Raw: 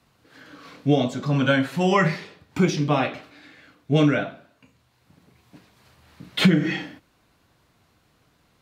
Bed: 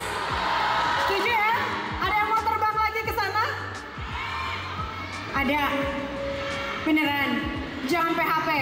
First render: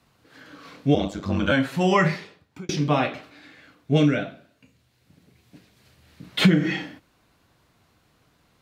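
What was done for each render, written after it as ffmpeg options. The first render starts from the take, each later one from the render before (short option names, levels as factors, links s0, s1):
-filter_complex "[0:a]asettb=1/sr,asplit=3[s0][s1][s2];[s0]atrim=end=0.944[s3];[s1]atrim=start=0.94:end=1.52,asetpts=PTS-STARTPTS,afade=t=in:d=0.004:c=qsin,afade=t=out:st=0.576:d=0.004:c=qsin,aeval=exprs='val(0)*sin(2*PI*49*n/s)':c=same[s4];[s2]atrim=start=1.516[s5];[s3][s4]acrossfade=d=0.004:c1=hsin:c2=qsin[s6];[s6][s5]acrossfade=d=0.004:c1=qsin:c2=hsin,asettb=1/sr,asplit=3[s7][s8][s9];[s7]atrim=end=3.984[s10];[s8]atrim=start=3.98:end=6.24,asetpts=PTS-STARTPTS,afade=t=in:d=0.004:c=qsin,afade=t=out:st=2.256:d=0.004:c=qsin,equalizer=f=1000:w=1.3:g=-8[s11];[s9]atrim=start=6.236[s12];[s10][s11]acrossfade=d=0.004:c1=hsin:c2=qsin[s13];[s13][s12]acrossfade=d=0.004:c1=qsin:c2=hsin,asplit=2[s14][s15];[s14]atrim=end=2.69,asetpts=PTS-STARTPTS,afade=t=out:st=2.11:d=0.58[s16];[s15]atrim=start=2.69,asetpts=PTS-STARTPTS,afade=t=in:d=0.004:c=hsin[s17];[s16][s17]concat=n=2:v=0:a=1"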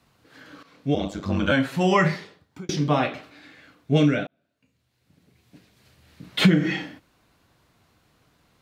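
-filter_complex "[0:a]asettb=1/sr,asplit=3[s0][s1][s2];[s0]atrim=end=2.084[s3];[s1]atrim=start=2.08:end=3.03,asetpts=PTS-STARTPTS,afade=t=in:d=0.004:c=qsin,afade=t=out:st=0.946:d=0.004:c=qsin,equalizer=f=2500:w=6.1:g=-6[s4];[s2]atrim=start=3.026[s5];[s3][s4]acrossfade=d=0.004:c1=hsin:c2=qsin[s6];[s6][s5]acrossfade=d=0.004:c1=qsin:c2=hsin,asplit=3[s7][s8][s9];[s7]atrim=end=0.63,asetpts=PTS-STARTPTS,afade=t=out:st=0.626:d=0.004:c=hsin:silence=0.199526[s10];[s8]atrim=start=0.63:end=4.27,asetpts=PTS-STARTPTS,afade=t=in:d=0.53:silence=0.199526,afade=t=out:st=3.636:d=0.004:c=hsin[s11];[s9]atrim=start=4.27,asetpts=PTS-STARTPTS,afade=t=in:d=2.02:c=qsin[s12];[s10][s11][s12]concat=n=3:v=0:a=1"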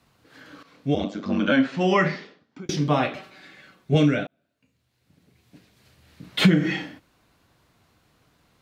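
-filter_complex "[0:a]asettb=1/sr,asplit=3[s0][s1][s2];[s0]atrim=end=1.044[s3];[s1]atrim=start=1.04:end=2.66,asetpts=PTS-STARTPTS,afade=t=in:d=0.004:c=qsin,afade=t=out:st=1.616:d=0.004:c=qsin,highpass=200,equalizer=f=240:t=q:w=4:g=9,equalizer=f=910:t=q:w=4:g=-4,equalizer=f=4000:t=q:w=4:g=-3,lowpass=f=5800:w=0.5412,lowpass=f=5800:w=1.3066[s4];[s2]atrim=start=2.656[s5];[s3][s4]acrossfade=d=0.004:c1=hsin:c2=qsin[s6];[s6][s5]acrossfade=d=0.004:c1=qsin:c2=hsin,asettb=1/sr,asplit=3[s7][s8][s9];[s7]atrim=end=3.164[s10];[s8]atrim=start=3.16:end=3.95,asetpts=PTS-STARTPTS,afade=t=in:d=0.004:c=qsin,afade=t=out:st=0.786:d=0.004:c=qsin,aecho=1:1:5.3:0.72,atrim=end_sample=34839[s11];[s9]atrim=start=3.946[s12];[s10][s11]acrossfade=d=0.004:c1=hsin:c2=qsin[s13];[s13][s12]acrossfade=d=0.004:c1=qsin:c2=hsin"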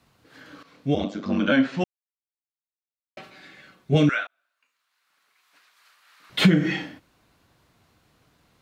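-filter_complex "[0:a]asettb=1/sr,asplit=3[s0][s1][s2];[s0]atrim=end=4.094[s3];[s1]atrim=start=4.09:end=6.3,asetpts=PTS-STARTPTS,afade=t=in:d=0.004:c=qsin,afade=t=out:st=2.206:d=0.004:c=qsin,highpass=f=1200:t=q:w=2.6[s4];[s2]atrim=start=6.296[s5];[s3][s4]acrossfade=d=0.004:c1=hsin:c2=qsin[s6];[s6][s5]acrossfade=d=0.004:c1=qsin:c2=hsin,asplit=3[s7][s8][s9];[s7]atrim=end=1.84,asetpts=PTS-STARTPTS,afade=t=out:st=1.836:d=0.004:c=hsin[s10];[s8]atrim=start=1.84:end=3.17,asetpts=PTS-STARTPTS,volume=0[s11];[s9]atrim=start=3.17,asetpts=PTS-STARTPTS,afade=t=in:d=0.004:c=hsin[s12];[s10][s11][s12]concat=n=3:v=0:a=1"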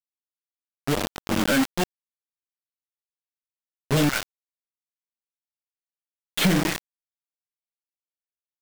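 -af "aeval=exprs='(tanh(5.62*val(0)+0.3)-tanh(0.3))/5.62':c=same,acrusher=bits=3:mix=0:aa=0.000001"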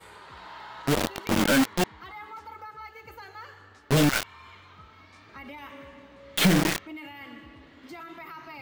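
-filter_complex "[1:a]volume=0.112[s0];[0:a][s0]amix=inputs=2:normalize=0"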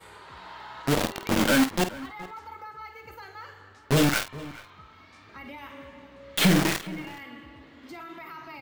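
-filter_complex "[0:a]asplit=2[s0][s1];[s1]adelay=49,volume=0.299[s2];[s0][s2]amix=inputs=2:normalize=0,asplit=2[s3][s4];[s4]adelay=419.8,volume=0.126,highshelf=f=4000:g=-9.45[s5];[s3][s5]amix=inputs=2:normalize=0"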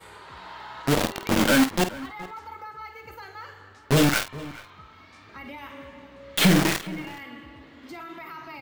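-af "volume=1.26"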